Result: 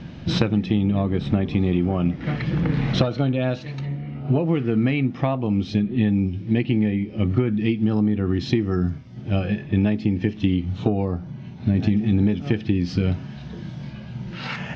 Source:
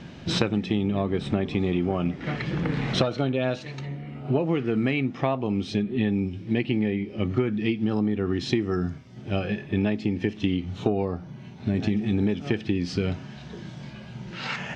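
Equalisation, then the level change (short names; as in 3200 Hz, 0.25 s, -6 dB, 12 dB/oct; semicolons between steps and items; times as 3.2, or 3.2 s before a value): LPF 6100 Hz 24 dB/oct; low shelf 240 Hz +8.5 dB; notch 400 Hz, Q 12; 0.0 dB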